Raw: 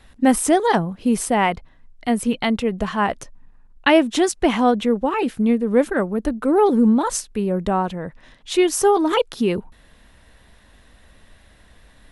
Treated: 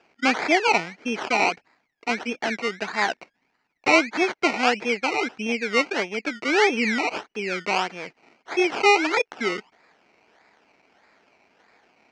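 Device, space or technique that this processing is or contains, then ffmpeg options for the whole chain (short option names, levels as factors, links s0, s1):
circuit-bent sampling toy: -af "acrusher=samples=21:mix=1:aa=0.000001:lfo=1:lforange=12.6:lforate=1.6,highpass=440,equalizer=f=550:t=q:w=4:g=-7,equalizer=f=1100:t=q:w=4:g=-7,equalizer=f=2300:t=q:w=4:g=8,equalizer=f=3600:t=q:w=4:g=-8,lowpass=f=5400:w=0.5412,lowpass=f=5400:w=1.3066"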